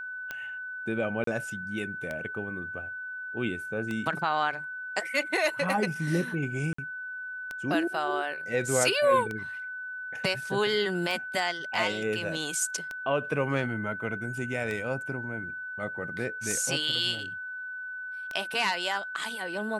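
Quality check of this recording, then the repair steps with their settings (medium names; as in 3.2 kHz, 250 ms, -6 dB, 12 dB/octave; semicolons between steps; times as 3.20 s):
tick 33 1/3 rpm -20 dBFS
whine 1.5 kHz -35 dBFS
1.24–1.27 s: dropout 33 ms
6.73–6.78 s: dropout 54 ms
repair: de-click; band-stop 1.5 kHz, Q 30; interpolate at 1.24 s, 33 ms; interpolate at 6.73 s, 54 ms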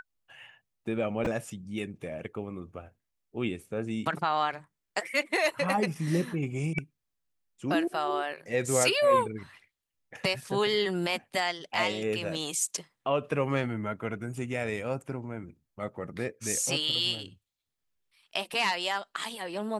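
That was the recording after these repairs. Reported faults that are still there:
nothing left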